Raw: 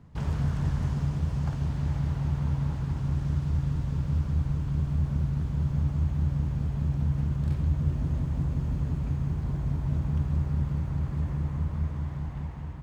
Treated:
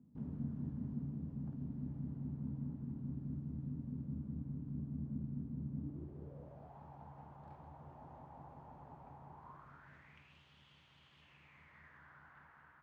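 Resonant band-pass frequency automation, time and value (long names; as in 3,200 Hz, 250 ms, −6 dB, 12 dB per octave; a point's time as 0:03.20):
resonant band-pass, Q 5
0:05.74 240 Hz
0:06.77 820 Hz
0:09.30 820 Hz
0:10.43 3,100 Hz
0:11.16 3,100 Hz
0:12.13 1,500 Hz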